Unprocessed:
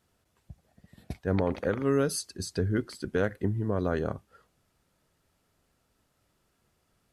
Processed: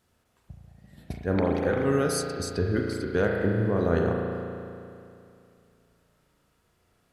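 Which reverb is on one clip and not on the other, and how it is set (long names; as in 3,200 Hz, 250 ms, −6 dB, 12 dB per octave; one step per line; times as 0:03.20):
spring reverb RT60 2.6 s, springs 35 ms, chirp 35 ms, DRR 0 dB
level +1.5 dB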